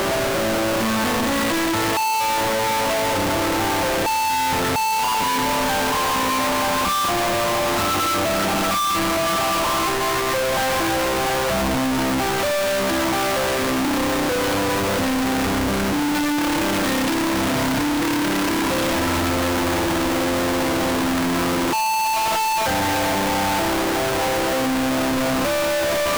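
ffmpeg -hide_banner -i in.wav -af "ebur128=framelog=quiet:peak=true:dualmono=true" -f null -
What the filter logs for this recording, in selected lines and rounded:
Integrated loudness:
  I:         -17.0 LUFS
  Threshold: -27.0 LUFS
Loudness range:
  LRA:         0.8 LU
  Threshold: -37.0 LUFS
  LRA low:   -17.4 LUFS
  LRA high:  -16.5 LUFS
True peak:
  Peak:      -14.4 dBFS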